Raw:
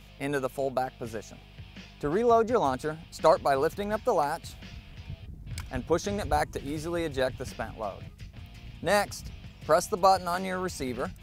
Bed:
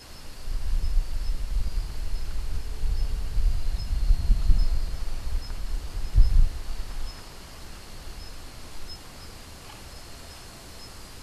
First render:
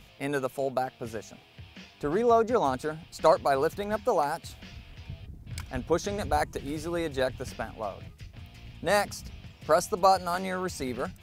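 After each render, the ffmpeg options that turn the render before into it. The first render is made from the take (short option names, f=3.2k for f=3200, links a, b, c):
-af "bandreject=f=50:t=h:w=4,bandreject=f=100:t=h:w=4,bandreject=f=150:t=h:w=4,bandreject=f=200:t=h:w=4"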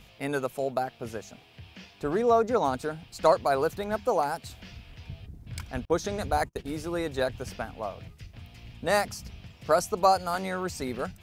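-filter_complex "[0:a]asettb=1/sr,asplit=3[a][b][c];[a]atrim=end=5.854[d];[b]atrim=start=5.85:end=6.84,asetpts=PTS-STARTPTS,afade=t=in:d=0.004:c=qsin,afade=t=out:st=0.986:d=0.004:c=qsin,agate=range=-35dB:threshold=-39dB:ratio=16:release=100:detection=peak[e];[c]atrim=start=6.836[f];[d][e]acrossfade=d=0.004:c1=hsin:c2=qsin[g];[g][f]acrossfade=d=0.004:c1=qsin:c2=hsin"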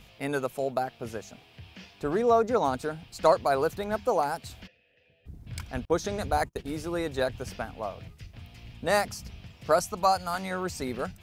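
-filter_complex "[0:a]asplit=3[a][b][c];[a]afade=t=out:st=4.66:d=0.02[d];[b]asplit=3[e][f][g];[e]bandpass=f=530:t=q:w=8,volume=0dB[h];[f]bandpass=f=1.84k:t=q:w=8,volume=-6dB[i];[g]bandpass=f=2.48k:t=q:w=8,volume=-9dB[j];[h][i][j]amix=inputs=3:normalize=0,afade=t=in:st=4.66:d=0.02,afade=t=out:st=5.25:d=0.02[k];[c]afade=t=in:st=5.25:d=0.02[l];[d][k][l]amix=inputs=3:normalize=0,asettb=1/sr,asplit=3[m][n][o];[m]atrim=end=9.794[p];[n]atrim=start=9.79:end=10.51,asetpts=PTS-STARTPTS,afade=t=in:d=0.004:c=qsin,afade=t=out:st=0.716:d=0.004:c=qsin,equalizer=f=420:w=1.5:g=-8.5[q];[o]atrim=start=10.506[r];[p][q]acrossfade=d=0.004:c1=hsin:c2=qsin[s];[s][r]acrossfade=d=0.004:c1=qsin:c2=hsin"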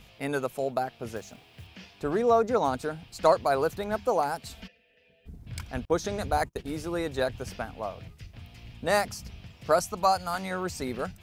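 -filter_complex "[0:a]asettb=1/sr,asplit=3[a][b][c];[a]atrim=end=1.164[d];[b]atrim=start=1.16:end=1.67,asetpts=PTS-STARTPTS,afade=t=in:d=0.004:c=qsin,afade=t=out:st=0.506:d=0.004:c=qsin,acrusher=bits=4:mode=log:mix=0:aa=0.000001[e];[c]atrim=start=1.666[f];[d][e]acrossfade=d=0.004:c1=hsin:c2=qsin[g];[g][f]acrossfade=d=0.004:c1=qsin:c2=hsin,asettb=1/sr,asplit=3[h][i][j];[h]atrim=end=4.454[k];[i]atrim=start=4.45:end=5.36,asetpts=PTS-STARTPTS,afade=t=in:d=0.004:c=qsin,afade=t=out:st=0.906:d=0.004:c=qsin,aecho=1:1:4.5:0.74,atrim=end_sample=40131[l];[j]atrim=start=5.356[m];[k][l]acrossfade=d=0.004:c1=hsin:c2=qsin[n];[n][m]acrossfade=d=0.004:c1=qsin:c2=hsin"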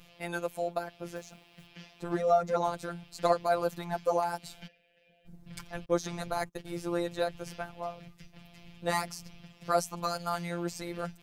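-af "afftfilt=real='hypot(re,im)*cos(PI*b)':imag='0':win_size=1024:overlap=0.75"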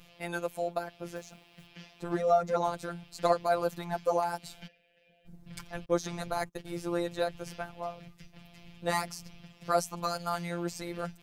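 -af anull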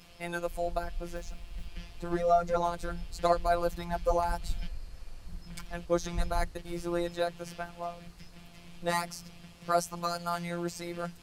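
-filter_complex "[1:a]volume=-14.5dB[a];[0:a][a]amix=inputs=2:normalize=0"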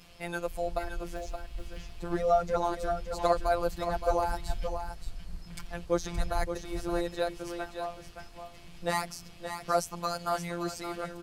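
-af "aecho=1:1:572:0.398"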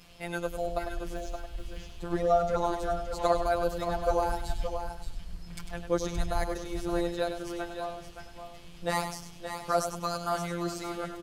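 -af "aecho=1:1:99|198|297|396:0.376|0.113|0.0338|0.0101"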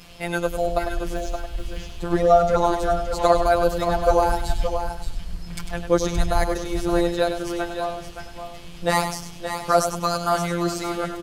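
-af "volume=9dB,alimiter=limit=-2dB:level=0:latency=1"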